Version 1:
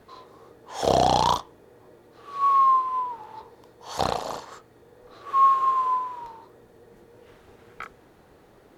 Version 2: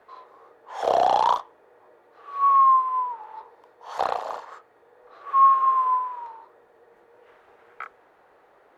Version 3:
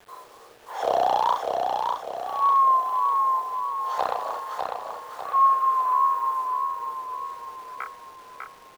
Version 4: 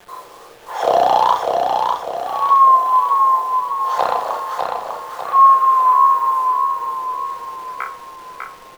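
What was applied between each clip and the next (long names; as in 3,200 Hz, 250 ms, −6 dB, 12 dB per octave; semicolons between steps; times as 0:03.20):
three-way crossover with the lows and the highs turned down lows −22 dB, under 480 Hz, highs −15 dB, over 2,400 Hz; level +2.5 dB
in parallel at −0.5 dB: downward compressor 5 to 1, threshold −29 dBFS, peak gain reduction 15 dB; on the sum: bit-depth reduction 8 bits, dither none; repeating echo 599 ms, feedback 47%, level −4 dB; level −4 dB
convolution reverb RT60 0.45 s, pre-delay 6 ms, DRR 7.5 dB; level +7.5 dB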